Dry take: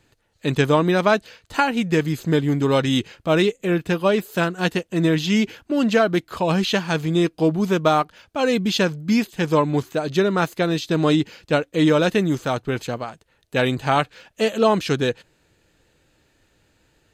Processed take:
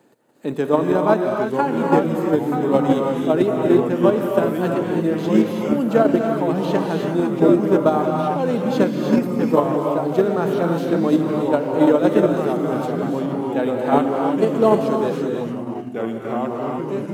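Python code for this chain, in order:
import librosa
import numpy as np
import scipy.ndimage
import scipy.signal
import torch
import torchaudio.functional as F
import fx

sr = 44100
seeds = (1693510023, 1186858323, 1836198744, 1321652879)

p1 = fx.law_mismatch(x, sr, coded='mu')
p2 = scipy.signal.sosfilt(scipy.signal.butter(4, 190.0, 'highpass', fs=sr, output='sos'), p1)
p3 = fx.echo_pitch(p2, sr, ms=738, semitones=-2, count=3, db_per_echo=-6.0)
p4 = fx.curve_eq(p3, sr, hz=(790.0, 2500.0, 6100.0, 8800.0), db=(0, -14, -14, -7))
p5 = fx.rev_gated(p4, sr, seeds[0], gate_ms=360, shape='rising', drr_db=0.5)
p6 = fx.level_steps(p5, sr, step_db=15)
p7 = p5 + (p6 * librosa.db_to_amplitude(-0.5))
y = p7 * librosa.db_to_amplitude(-3.5)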